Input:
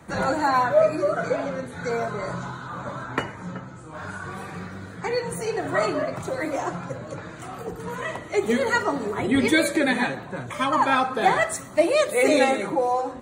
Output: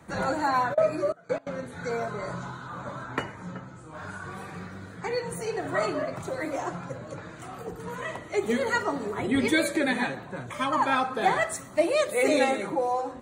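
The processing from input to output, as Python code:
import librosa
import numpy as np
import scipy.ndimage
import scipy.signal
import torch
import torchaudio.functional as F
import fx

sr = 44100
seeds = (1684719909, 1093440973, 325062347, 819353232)

y = fx.step_gate(x, sr, bpm=174, pattern='x..x.xxx.xxx', floor_db=-24.0, edge_ms=4.5, at=(0.73, 1.64), fade=0.02)
y = y * librosa.db_to_amplitude(-4.0)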